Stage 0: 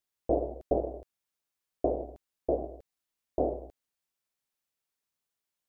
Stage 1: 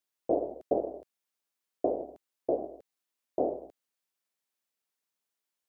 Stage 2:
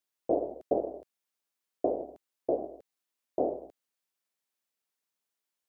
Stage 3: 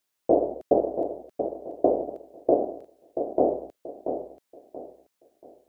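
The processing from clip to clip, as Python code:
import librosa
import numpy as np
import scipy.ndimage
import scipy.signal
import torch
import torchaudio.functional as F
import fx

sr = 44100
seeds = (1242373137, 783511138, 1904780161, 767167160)

y1 = scipy.signal.sosfilt(scipy.signal.butter(2, 190.0, 'highpass', fs=sr, output='sos'), x)
y2 = y1
y3 = fx.echo_feedback(y2, sr, ms=682, feedback_pct=31, wet_db=-8.0)
y3 = y3 * 10.0 ** (7.5 / 20.0)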